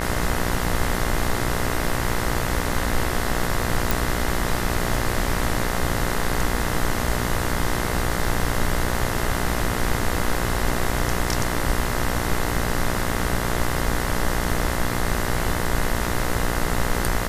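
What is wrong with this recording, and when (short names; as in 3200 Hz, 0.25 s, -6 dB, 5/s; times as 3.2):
buzz 60 Hz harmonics 35 -27 dBFS
3.91 pop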